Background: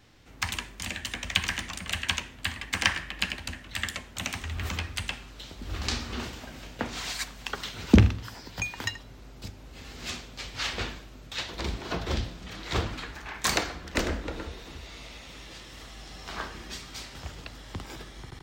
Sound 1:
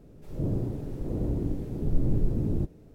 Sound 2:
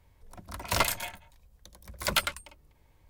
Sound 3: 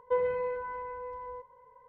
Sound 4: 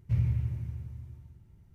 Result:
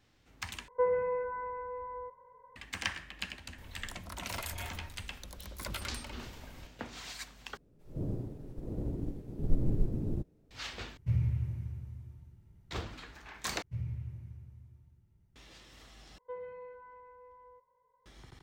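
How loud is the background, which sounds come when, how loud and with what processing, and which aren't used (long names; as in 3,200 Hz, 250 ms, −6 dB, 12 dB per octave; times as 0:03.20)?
background −10.5 dB
0:00.68: overwrite with 3 −0.5 dB + low-pass filter 2,100 Hz 24 dB per octave
0:03.58: mix in 2 −17 dB + envelope flattener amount 70%
0:07.57: overwrite with 1 −1.5 dB + expander for the loud parts, over −40 dBFS
0:10.97: overwrite with 4 −2.5 dB
0:13.62: overwrite with 4 −10.5 dB
0:16.18: overwrite with 3 −15 dB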